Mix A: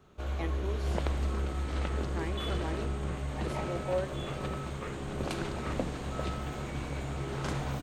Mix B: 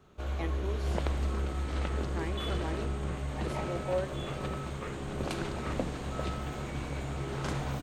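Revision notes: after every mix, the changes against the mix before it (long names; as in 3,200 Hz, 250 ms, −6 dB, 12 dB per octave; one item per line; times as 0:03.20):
nothing changed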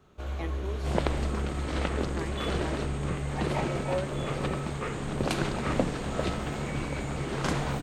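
second sound +7.0 dB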